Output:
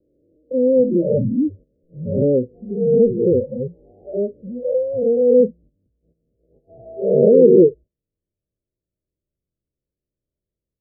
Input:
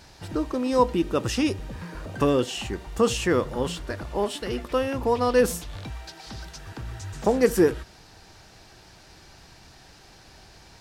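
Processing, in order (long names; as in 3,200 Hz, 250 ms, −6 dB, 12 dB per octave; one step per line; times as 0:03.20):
peak hold with a rise ahead of every peak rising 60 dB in 2.37 s
noise reduction from a noise print of the clip's start 28 dB
noise gate −41 dBFS, range −14 dB
Butterworth low-pass 610 Hz 96 dB per octave
level +5.5 dB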